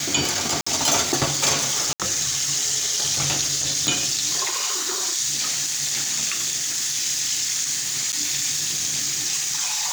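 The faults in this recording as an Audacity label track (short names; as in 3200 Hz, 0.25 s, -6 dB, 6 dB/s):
0.610000	0.670000	gap 55 ms
1.930000	2.000000	gap 67 ms
3.870000	3.870000	pop
8.120000	8.130000	gap 8.3 ms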